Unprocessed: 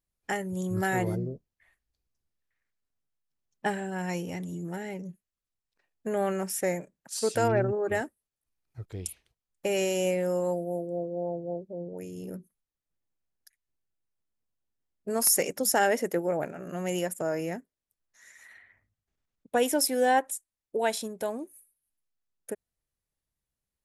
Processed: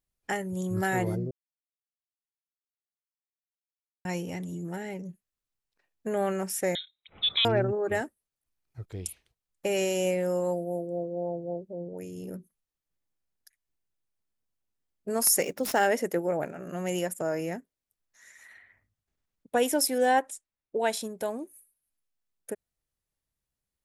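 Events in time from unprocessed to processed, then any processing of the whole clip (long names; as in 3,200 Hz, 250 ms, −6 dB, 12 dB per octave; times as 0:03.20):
0:01.31–0:04.05: silence
0:06.75–0:07.45: voice inversion scrambler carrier 3,900 Hz
0:15.43–0:15.86: running median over 5 samples
0:19.98–0:20.93: low-pass that shuts in the quiet parts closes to 2,600 Hz, open at −20 dBFS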